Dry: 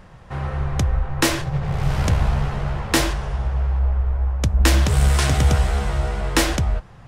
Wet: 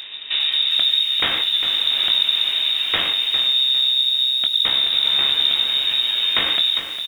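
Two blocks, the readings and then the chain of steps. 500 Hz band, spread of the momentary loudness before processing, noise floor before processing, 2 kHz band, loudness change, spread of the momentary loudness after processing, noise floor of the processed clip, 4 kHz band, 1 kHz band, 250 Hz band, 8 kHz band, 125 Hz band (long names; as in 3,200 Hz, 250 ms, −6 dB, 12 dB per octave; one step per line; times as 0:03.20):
−11.0 dB, 8 LU, −44 dBFS, +1.0 dB, +5.0 dB, 3 LU, −30 dBFS, +17.5 dB, −6.5 dB, below −15 dB, below −15 dB, below −25 dB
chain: wavefolder on the positive side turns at −18 dBFS
parametric band 320 Hz −10 dB 0.44 octaves
far-end echo of a speakerphone 100 ms, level −16 dB
speech leveller within 4 dB 2 s
voice inversion scrambler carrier 3,700 Hz
double-tracking delay 22 ms −9 dB
downward compressor 2 to 1, threshold −27 dBFS, peak gain reduction 9.5 dB
low-shelf EQ 92 Hz −7.5 dB
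feedback echo at a low word length 404 ms, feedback 35%, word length 7 bits, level −9 dB
level +6 dB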